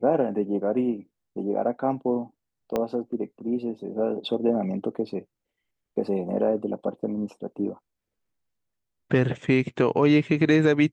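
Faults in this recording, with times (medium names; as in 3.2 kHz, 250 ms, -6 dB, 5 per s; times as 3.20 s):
2.76 s: pop -13 dBFS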